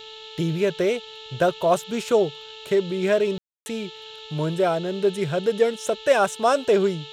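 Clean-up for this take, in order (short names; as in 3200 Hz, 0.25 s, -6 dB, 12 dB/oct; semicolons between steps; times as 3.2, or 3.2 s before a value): de-hum 438.4 Hz, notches 17; room tone fill 3.38–3.66; noise print and reduce 25 dB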